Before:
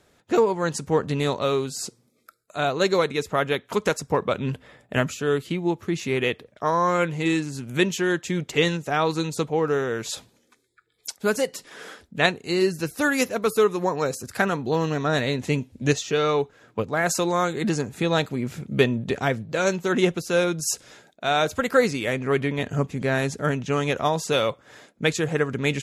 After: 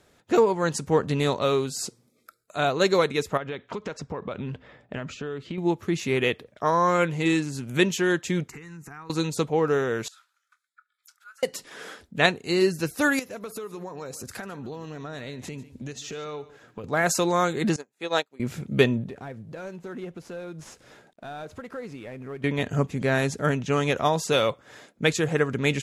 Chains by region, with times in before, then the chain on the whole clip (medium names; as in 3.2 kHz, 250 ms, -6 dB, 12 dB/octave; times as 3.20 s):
3.37–5.58 s: distance through air 140 m + compression 10:1, threshold -28 dBFS
8.48–9.10 s: compression 12:1, threshold -34 dBFS + static phaser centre 1.4 kHz, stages 4
10.08–11.43 s: compression, threshold -38 dBFS + ladder high-pass 1.3 kHz, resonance 85% + doubling 25 ms -13 dB
13.19–16.84 s: compression 8:1, threshold -33 dBFS + delay 146 ms -17 dB
17.76–18.40 s: high-pass 380 Hz + upward expansion 2.5:1, over -42 dBFS
19.07–22.44 s: CVSD coder 64 kbps + compression 2.5:1, threshold -40 dBFS + treble shelf 2.6 kHz -11 dB
whole clip: none